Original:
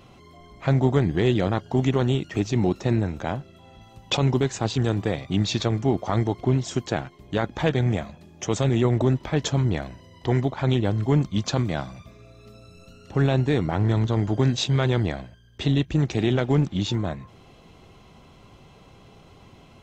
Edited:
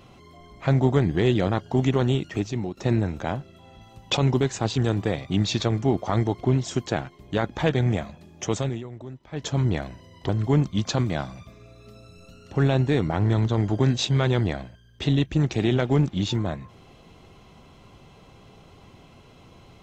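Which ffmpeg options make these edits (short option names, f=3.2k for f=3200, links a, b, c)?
-filter_complex "[0:a]asplit=5[a][b][c][d][e];[a]atrim=end=2.77,asetpts=PTS-STARTPTS,afade=t=out:st=2.26:d=0.51:silence=0.199526[f];[b]atrim=start=2.77:end=8.84,asetpts=PTS-STARTPTS,afade=t=in:d=0.004:c=hsin:silence=0.199526,afade=t=out:st=5.71:d=0.36:silence=0.125893[g];[c]atrim=start=8.84:end=9.27,asetpts=PTS-STARTPTS,volume=-18dB[h];[d]atrim=start=9.27:end=10.292,asetpts=PTS-STARTPTS,afade=t=in:d=0.36:silence=0.125893[i];[e]atrim=start=10.878[j];[f][g][h][i]concat=n=4:v=0:a=1[k];[k][j]acrossfade=d=0.004:c1=hsin:c2=hsin"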